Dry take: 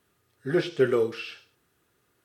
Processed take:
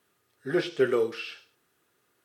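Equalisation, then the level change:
high-pass filter 260 Hz 6 dB per octave
0.0 dB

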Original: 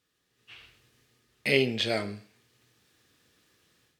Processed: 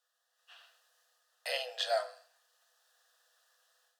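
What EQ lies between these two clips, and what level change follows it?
Chebyshev high-pass with heavy ripple 480 Hz, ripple 9 dB
phaser with its sweep stopped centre 920 Hz, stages 4
+6.5 dB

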